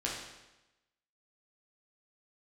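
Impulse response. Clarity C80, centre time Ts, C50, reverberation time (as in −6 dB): 5.0 dB, 55 ms, 2.0 dB, 1.0 s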